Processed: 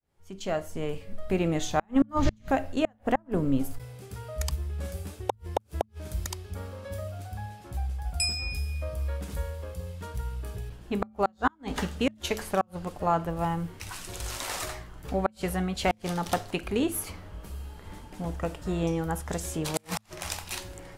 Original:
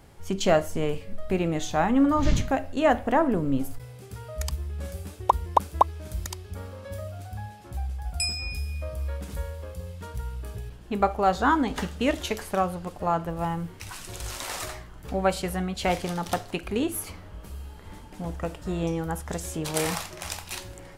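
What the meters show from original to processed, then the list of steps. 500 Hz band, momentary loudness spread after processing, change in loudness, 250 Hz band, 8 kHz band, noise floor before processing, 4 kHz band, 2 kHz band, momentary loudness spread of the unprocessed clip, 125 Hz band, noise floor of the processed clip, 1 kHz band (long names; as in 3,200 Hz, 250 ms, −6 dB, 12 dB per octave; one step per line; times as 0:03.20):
−3.5 dB, 12 LU, −3.5 dB, −2.5 dB, −1.5 dB, −45 dBFS, −1.5 dB, −3.0 dB, 16 LU, −1.0 dB, −58 dBFS, −5.0 dB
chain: fade in at the beginning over 1.51 s
gate with flip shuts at −12 dBFS, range −40 dB
hum removal 108.3 Hz, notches 2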